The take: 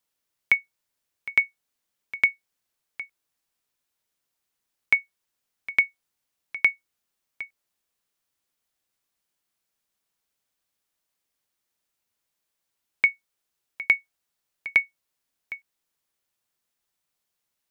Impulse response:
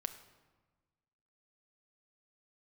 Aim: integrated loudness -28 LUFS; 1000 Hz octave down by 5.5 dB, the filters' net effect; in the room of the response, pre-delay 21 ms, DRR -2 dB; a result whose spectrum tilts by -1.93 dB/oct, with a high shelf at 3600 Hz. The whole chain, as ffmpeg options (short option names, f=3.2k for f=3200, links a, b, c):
-filter_complex "[0:a]equalizer=f=1k:t=o:g=-7,highshelf=f=3.6k:g=-3.5,asplit=2[a][b];[1:a]atrim=start_sample=2205,adelay=21[c];[b][c]afir=irnorm=-1:irlink=0,volume=3dB[d];[a][d]amix=inputs=2:normalize=0,volume=-3.5dB"